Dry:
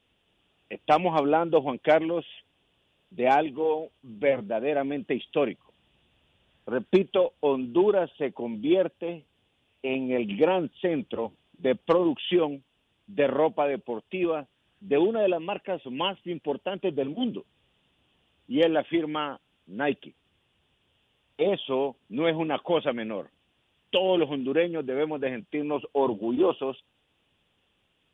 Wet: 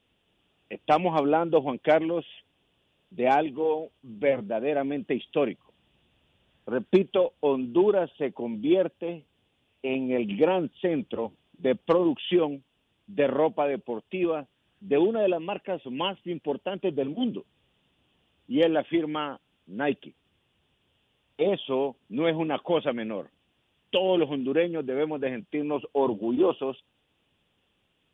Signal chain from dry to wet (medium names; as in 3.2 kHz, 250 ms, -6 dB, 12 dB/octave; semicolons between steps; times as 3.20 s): peaking EQ 210 Hz +2.5 dB 2.6 oct; trim -1.5 dB